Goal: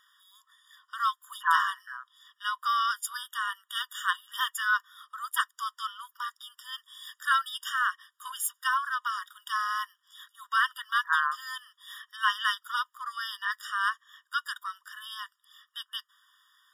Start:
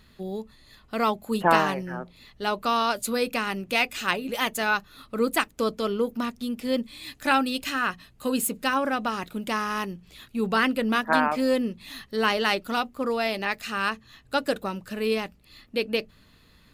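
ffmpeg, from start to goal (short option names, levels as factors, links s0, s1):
-filter_complex "[0:a]asettb=1/sr,asplit=3[s0][s1][s2];[s0]atrim=end=3.174[s3];[s1]atrim=start=3.17:end=4.18,asetpts=PTS-STARTPTS,afade=t=in:d=0.004:c=qsin,afade=t=out:st=1.006:d=0.004:c=qsin,equalizer=f=5100:w=7.2:g=-11[s4];[s2]atrim=start=4.176[s5];[s3][s4]acrossfade=d=0.004:c1=hsin:c2=qsin[s6];[s6][s5]acrossfade=d=0.004:c1=qsin:c2=hsin,afftfilt=real='re*eq(mod(floor(b*sr/1024/950),2),1)':imag='im*eq(mod(floor(b*sr/1024/950),2),1)':win_size=1024:overlap=0.75"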